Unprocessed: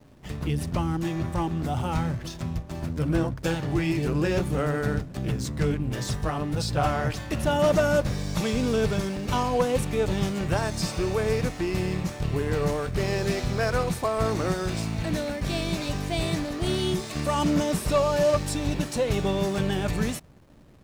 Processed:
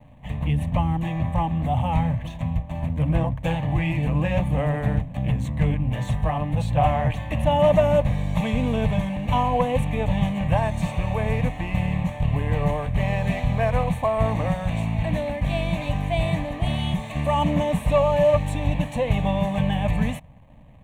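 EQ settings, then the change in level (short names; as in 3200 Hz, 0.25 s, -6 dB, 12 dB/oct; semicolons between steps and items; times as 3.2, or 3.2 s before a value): LPF 2100 Hz 6 dB/oct; fixed phaser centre 1400 Hz, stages 6; +7.0 dB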